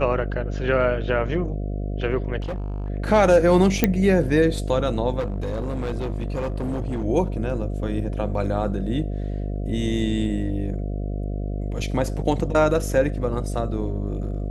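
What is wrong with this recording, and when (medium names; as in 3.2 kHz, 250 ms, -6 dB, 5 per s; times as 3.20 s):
buzz 50 Hz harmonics 14 -27 dBFS
2.40–2.90 s: clipped -25 dBFS
3.84 s: pop -3 dBFS
5.19–7.05 s: clipped -22.5 dBFS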